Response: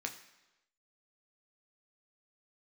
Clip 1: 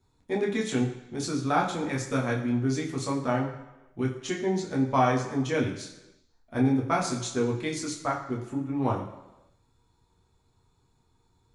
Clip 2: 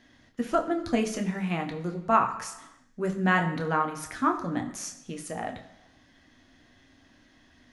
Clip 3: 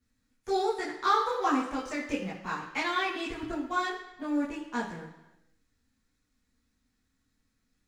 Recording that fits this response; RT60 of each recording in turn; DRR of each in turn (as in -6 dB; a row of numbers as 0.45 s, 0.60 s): 2; 1.0 s, 1.0 s, 1.0 s; -2.5 dB, 3.0 dB, -9.0 dB